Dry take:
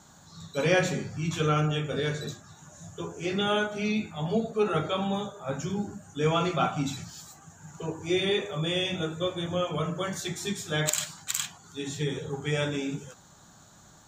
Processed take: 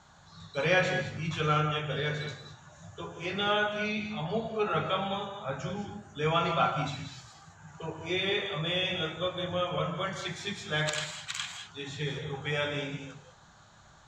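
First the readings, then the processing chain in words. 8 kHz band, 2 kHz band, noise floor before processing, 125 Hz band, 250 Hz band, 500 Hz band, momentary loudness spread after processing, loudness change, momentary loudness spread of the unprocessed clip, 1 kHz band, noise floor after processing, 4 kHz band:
−10.0 dB, +1.5 dB, −55 dBFS, −3.5 dB, −6.0 dB, −3.0 dB, 14 LU, −2.0 dB, 14 LU, +1.0 dB, −57 dBFS, −0.5 dB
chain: low-pass filter 3,700 Hz 12 dB per octave
parametric band 260 Hz −11 dB 1.7 octaves
reverb whose tail is shaped and stops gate 230 ms rising, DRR 7 dB
level +1.5 dB

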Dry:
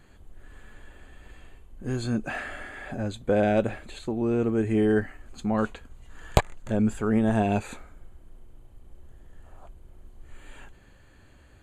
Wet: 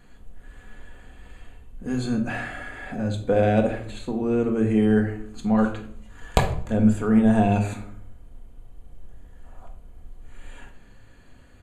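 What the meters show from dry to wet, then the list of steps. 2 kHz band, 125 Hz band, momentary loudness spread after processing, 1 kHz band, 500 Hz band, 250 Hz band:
+2.0 dB, +4.5 dB, 14 LU, +3.0 dB, +2.0 dB, +5.0 dB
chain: rectangular room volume 970 cubic metres, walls furnished, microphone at 1.8 metres
downsampling to 32,000 Hz

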